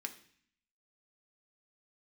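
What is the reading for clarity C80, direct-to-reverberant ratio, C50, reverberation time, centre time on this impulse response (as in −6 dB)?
16.5 dB, 4.5 dB, 13.0 dB, 0.55 s, 7 ms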